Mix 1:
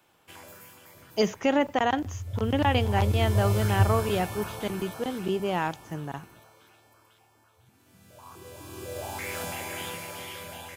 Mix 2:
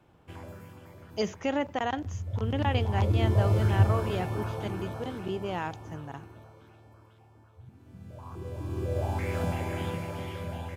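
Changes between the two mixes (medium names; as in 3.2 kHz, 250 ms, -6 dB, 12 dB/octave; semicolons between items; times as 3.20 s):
speech -5.5 dB; first sound: add tilt EQ -4 dB/octave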